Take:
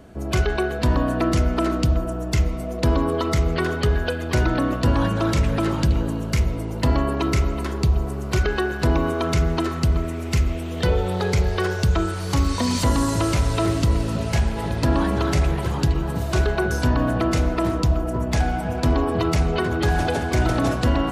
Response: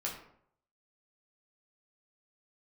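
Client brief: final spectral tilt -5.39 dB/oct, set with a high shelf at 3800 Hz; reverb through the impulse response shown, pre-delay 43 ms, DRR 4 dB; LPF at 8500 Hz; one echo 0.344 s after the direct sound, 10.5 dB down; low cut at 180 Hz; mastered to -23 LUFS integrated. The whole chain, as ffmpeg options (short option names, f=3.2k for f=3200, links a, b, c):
-filter_complex "[0:a]highpass=180,lowpass=8.5k,highshelf=f=3.8k:g=-7.5,aecho=1:1:344:0.299,asplit=2[a][b];[1:a]atrim=start_sample=2205,adelay=43[c];[b][c]afir=irnorm=-1:irlink=0,volume=-6dB[d];[a][d]amix=inputs=2:normalize=0"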